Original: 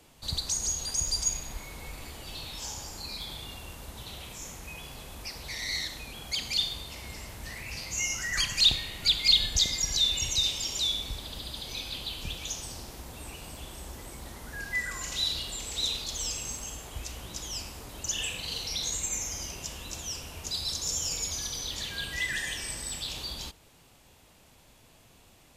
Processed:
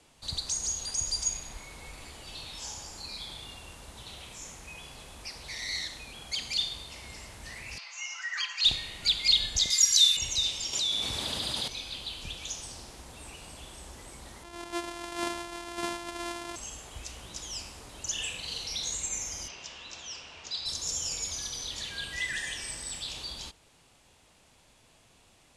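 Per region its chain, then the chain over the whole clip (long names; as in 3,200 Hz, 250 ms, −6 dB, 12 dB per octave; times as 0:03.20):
0:07.78–0:08.65: high-pass filter 910 Hz 24 dB per octave + high-frequency loss of the air 170 metres + comb filter 5.9 ms, depth 73%
0:09.70–0:10.17: linear-phase brick-wall band-stop 270–1,000 Hz + RIAA equalisation recording
0:10.73–0:11.68: high-pass filter 96 Hz + envelope flattener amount 70%
0:14.43–0:16.56: samples sorted by size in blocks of 128 samples + low-shelf EQ 140 Hz −6.5 dB + hollow resonant body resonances 900/3,300 Hz, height 13 dB
0:19.48–0:20.66: Gaussian smoothing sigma 2 samples + spectral tilt +3 dB per octave
whole clip: Butterworth low-pass 11,000 Hz 36 dB per octave; low-shelf EQ 460 Hz −4 dB; level −1.5 dB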